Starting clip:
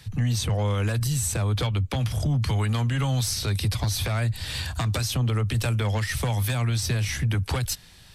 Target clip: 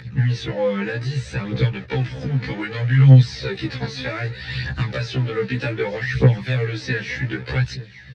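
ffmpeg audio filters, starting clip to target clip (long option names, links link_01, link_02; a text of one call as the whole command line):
ffmpeg -i in.wav -filter_complex "[0:a]aecho=1:1:867:0.112,asplit=2[link_01][link_02];[link_02]acrusher=bits=2:mode=log:mix=0:aa=0.000001,volume=-7.5dB[link_03];[link_01][link_03]amix=inputs=2:normalize=0,aphaser=in_gain=1:out_gain=1:delay=4.6:decay=0.63:speed=0.64:type=triangular,highpass=120,equalizer=frequency=150:width_type=q:width=4:gain=8,equalizer=frequency=450:width_type=q:width=4:gain=7,equalizer=frequency=670:width_type=q:width=4:gain=-9,equalizer=frequency=1100:width_type=q:width=4:gain=-9,equalizer=frequency=1800:width_type=q:width=4:gain=7,equalizer=frequency=3200:width_type=q:width=4:gain=-7,lowpass=frequency=4000:width=0.5412,lowpass=frequency=4000:width=1.3066,acompressor=mode=upward:threshold=-39dB:ratio=2.5,afftfilt=real='re*1.73*eq(mod(b,3),0)':imag='im*1.73*eq(mod(b,3),0)':win_size=2048:overlap=0.75,volume=1.5dB" out.wav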